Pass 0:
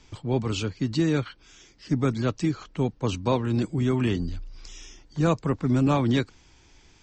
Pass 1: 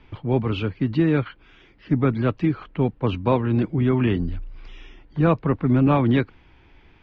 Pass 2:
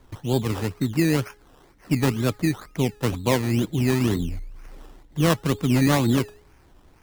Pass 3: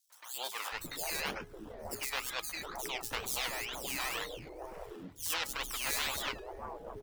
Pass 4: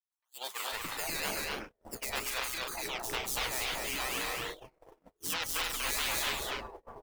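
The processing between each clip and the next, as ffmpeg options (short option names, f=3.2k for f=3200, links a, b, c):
-af "lowpass=f=2.9k:w=0.5412,lowpass=f=2.9k:w=1.3066,volume=4dB"
-af "bandreject=f=416.9:t=h:w=4,bandreject=f=833.8:t=h:w=4,bandreject=f=1.2507k:t=h:w=4,bandreject=f=1.6676k:t=h:w=4,bandreject=f=2.0845k:t=h:w=4,acrusher=samples=16:mix=1:aa=0.000001:lfo=1:lforange=9.6:lforate=2.1,volume=-1.5dB"
-filter_complex "[0:a]bandreject=f=390:w=12,acrossover=split=770|5100[a][b][c];[b]adelay=100[d];[a]adelay=720[e];[e][d][c]amix=inputs=3:normalize=0,afftfilt=real='re*lt(hypot(re,im),0.1)':imag='im*lt(hypot(re,im),0.1)':win_size=1024:overlap=0.75,volume=-1.5dB"
-filter_complex "[0:a]asplit=2[a][b];[b]aecho=0:1:242|282.8:0.794|0.501[c];[a][c]amix=inputs=2:normalize=0,agate=range=-37dB:threshold=-39dB:ratio=16:detection=peak"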